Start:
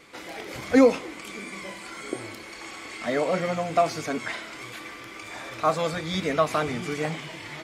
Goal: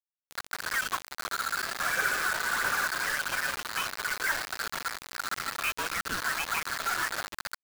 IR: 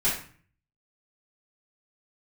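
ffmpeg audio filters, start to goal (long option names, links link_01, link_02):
-filter_complex "[0:a]highpass=frequency=2300:width_type=q:width=2,alimiter=limit=-22dB:level=0:latency=1:release=214,lowpass=frequency=3100:width_type=q:width=0.5098,lowpass=frequency=3100:width_type=q:width=0.6013,lowpass=frequency=3100:width_type=q:width=0.9,lowpass=frequency=3100:width_type=q:width=2.563,afreqshift=-3700,dynaudnorm=framelen=130:gausssize=7:maxgain=4dB,aphaser=in_gain=1:out_gain=1:delay=3.4:decay=0.39:speed=1.5:type=triangular,asplit=3[link_01][link_02][link_03];[link_01]afade=type=out:start_time=1.78:duration=0.02[link_04];[link_02]acontrast=67,afade=type=in:start_time=1.78:duration=0.02,afade=type=out:start_time=2.86:duration=0.02[link_05];[link_03]afade=type=in:start_time=2.86:duration=0.02[link_06];[link_04][link_05][link_06]amix=inputs=3:normalize=0,afftdn=noise_reduction=19:noise_floor=-40,aecho=1:1:267|534|801:0.0891|0.0348|0.0136,acrusher=bits=4:mix=0:aa=0.000001,volume=-1.5dB"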